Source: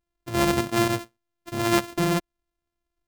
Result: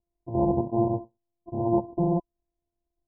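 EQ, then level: Chebyshev low-pass 1 kHz, order 10; 0.0 dB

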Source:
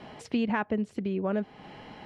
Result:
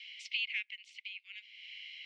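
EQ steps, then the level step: rippled Chebyshev high-pass 2.1 kHz, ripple 3 dB; distance through air 200 m; +12.5 dB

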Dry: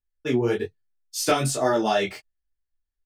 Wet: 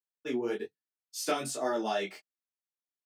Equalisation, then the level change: high-pass 190 Hz 24 dB/octave; -9.0 dB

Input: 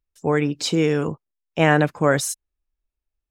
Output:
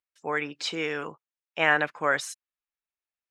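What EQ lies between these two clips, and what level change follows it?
band-pass filter 1.9 kHz, Q 0.87; 0.0 dB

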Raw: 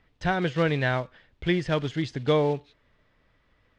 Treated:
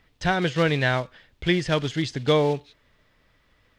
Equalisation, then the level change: treble shelf 3.9 kHz +10 dB; +2.0 dB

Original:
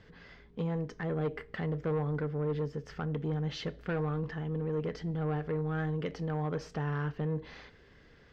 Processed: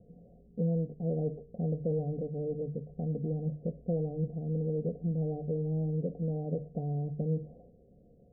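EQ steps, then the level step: rippled Chebyshev low-pass 740 Hz, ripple 9 dB; hum notches 50/100/150 Hz; +5.5 dB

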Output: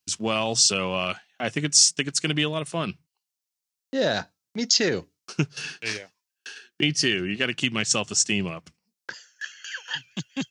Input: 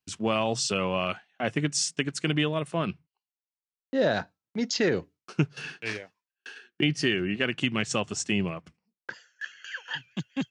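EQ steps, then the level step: treble shelf 4.3 kHz +9 dB; peaking EQ 5.5 kHz +6 dB 1.2 oct; 0.0 dB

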